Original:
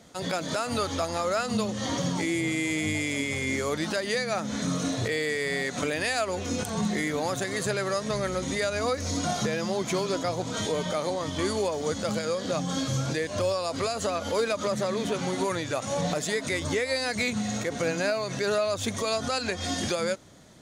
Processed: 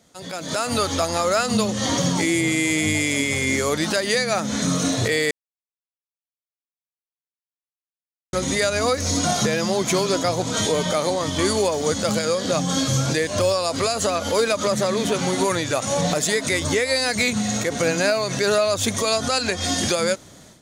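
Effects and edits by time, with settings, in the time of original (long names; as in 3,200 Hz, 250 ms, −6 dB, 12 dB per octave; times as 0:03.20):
0:05.31–0:08.33: silence
whole clip: high-shelf EQ 5,200 Hz +6.5 dB; automatic gain control gain up to 14 dB; level −6 dB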